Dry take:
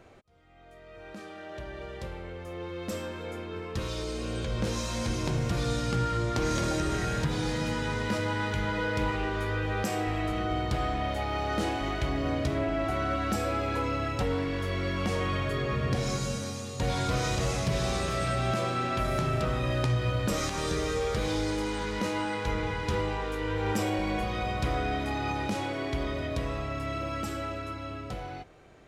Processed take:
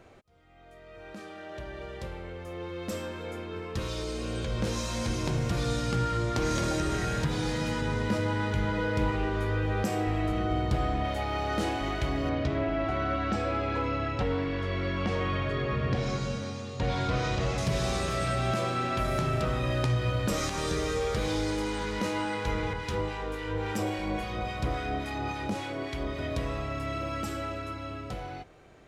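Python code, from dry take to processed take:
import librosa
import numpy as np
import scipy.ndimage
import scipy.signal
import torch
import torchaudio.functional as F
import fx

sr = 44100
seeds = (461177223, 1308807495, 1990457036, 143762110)

y = fx.tilt_shelf(x, sr, db=3.0, hz=710.0, at=(7.81, 11.05))
y = fx.lowpass(y, sr, hz=4200.0, slope=12, at=(12.29, 17.58))
y = fx.harmonic_tremolo(y, sr, hz=3.6, depth_pct=50, crossover_hz=1200.0, at=(22.73, 26.19))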